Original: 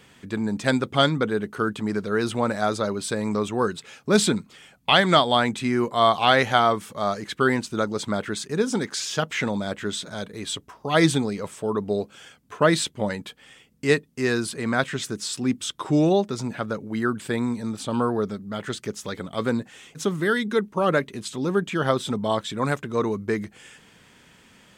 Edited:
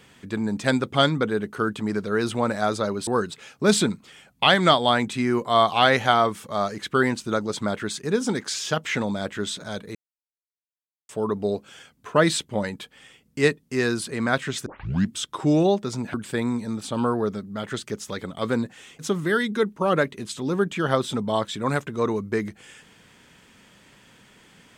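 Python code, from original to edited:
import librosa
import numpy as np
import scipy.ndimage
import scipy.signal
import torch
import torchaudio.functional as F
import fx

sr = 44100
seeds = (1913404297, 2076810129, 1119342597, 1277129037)

y = fx.edit(x, sr, fx.cut(start_s=3.07, length_s=0.46),
    fx.silence(start_s=10.41, length_s=1.14),
    fx.tape_start(start_s=15.12, length_s=0.47),
    fx.cut(start_s=16.6, length_s=0.5), tone=tone)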